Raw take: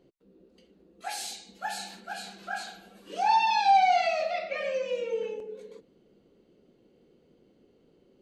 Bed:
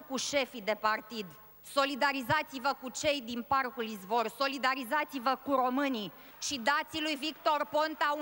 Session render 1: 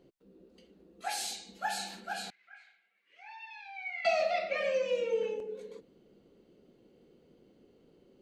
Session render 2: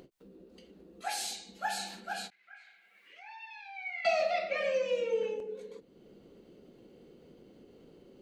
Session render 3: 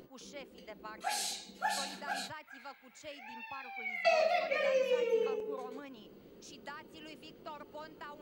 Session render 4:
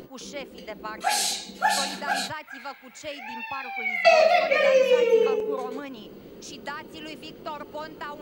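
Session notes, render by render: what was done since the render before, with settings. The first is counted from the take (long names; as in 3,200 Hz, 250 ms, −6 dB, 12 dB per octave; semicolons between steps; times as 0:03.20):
0:02.30–0:04.05: resonant band-pass 2,100 Hz, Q 13
upward compression, threshold −48 dBFS; every ending faded ahead of time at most 410 dB per second
mix in bed −18 dB
level +11.5 dB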